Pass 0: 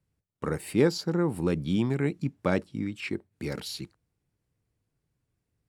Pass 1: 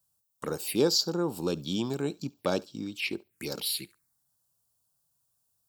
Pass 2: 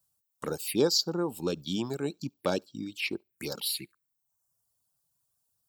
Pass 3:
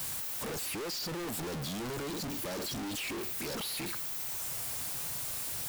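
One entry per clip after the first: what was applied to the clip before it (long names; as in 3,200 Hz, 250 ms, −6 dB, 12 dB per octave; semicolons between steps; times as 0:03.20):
phaser swept by the level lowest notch 360 Hz, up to 2,000 Hz, full sweep at −29.5 dBFS; RIAA equalisation recording; feedback echo with a high-pass in the loop 70 ms, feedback 15%, high-pass 570 Hz, level −22.5 dB; level +2.5 dB
reverb reduction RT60 0.81 s
sign of each sample alone; level −3 dB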